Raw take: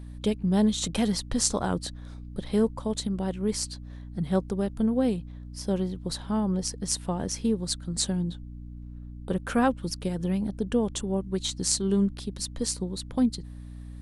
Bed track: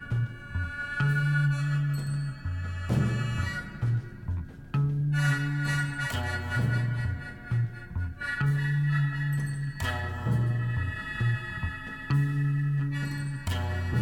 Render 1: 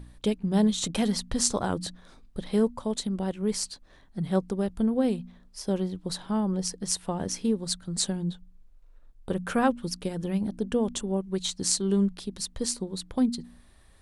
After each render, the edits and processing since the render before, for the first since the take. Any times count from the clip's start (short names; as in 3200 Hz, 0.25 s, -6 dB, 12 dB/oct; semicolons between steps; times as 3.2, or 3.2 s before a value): de-hum 60 Hz, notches 5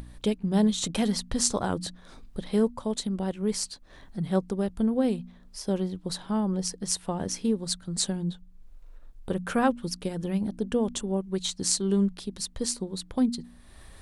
upward compressor, threshold -37 dBFS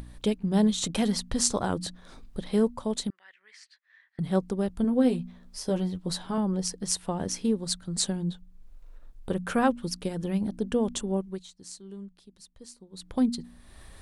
3.1–4.19 ladder band-pass 2000 Hz, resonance 70%; 4.83–6.38 doubler 12 ms -5 dB; 11.2–13.15 dip -18 dB, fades 0.25 s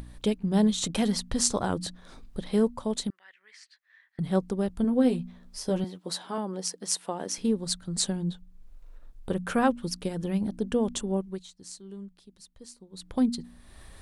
5.84–7.38 HPF 310 Hz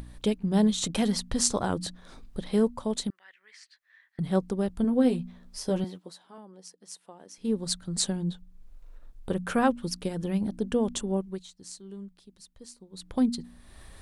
5.97–7.54 dip -15.5 dB, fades 0.15 s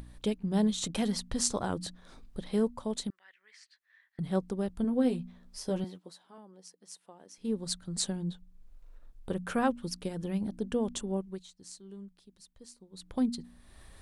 gain -4.5 dB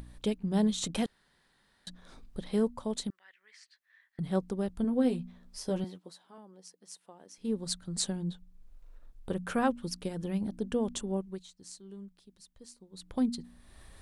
1.06–1.87 room tone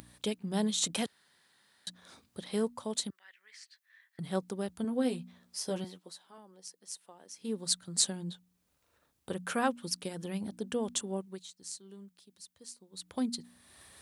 HPF 70 Hz 24 dB/oct; tilt +2 dB/oct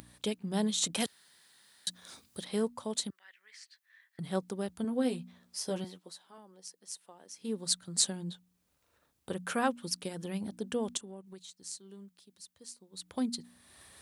1–2.45 high shelf 3400 Hz +10 dB; 10.97–11.48 compressor 3:1, threshold -45 dBFS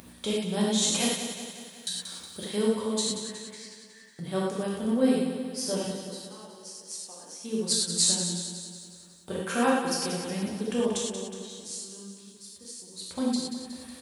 feedback echo 0.183 s, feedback 57%, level -8.5 dB; non-linear reverb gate 0.14 s flat, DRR -4.5 dB